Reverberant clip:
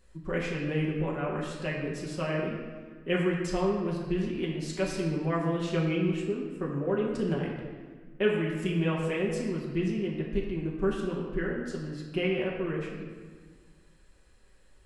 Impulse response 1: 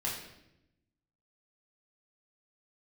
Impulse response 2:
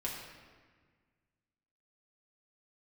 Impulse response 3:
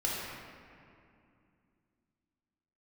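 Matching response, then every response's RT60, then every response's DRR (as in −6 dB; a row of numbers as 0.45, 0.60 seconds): 2; 0.85, 1.6, 2.5 seconds; −6.0, −4.5, −5.5 decibels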